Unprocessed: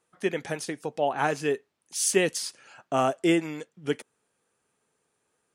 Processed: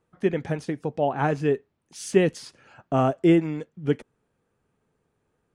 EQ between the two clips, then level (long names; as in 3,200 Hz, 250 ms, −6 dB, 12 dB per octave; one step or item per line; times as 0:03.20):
RIAA equalisation playback
0.0 dB